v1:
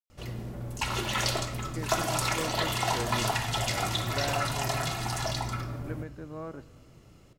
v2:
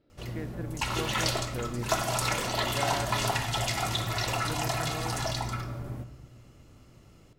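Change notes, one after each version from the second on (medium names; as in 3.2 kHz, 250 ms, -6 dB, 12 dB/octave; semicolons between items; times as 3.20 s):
speech: entry -1.40 s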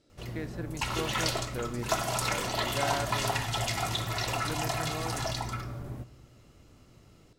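speech: remove distance through air 350 m; background: send -8.0 dB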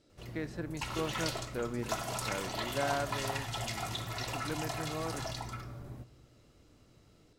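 background -6.5 dB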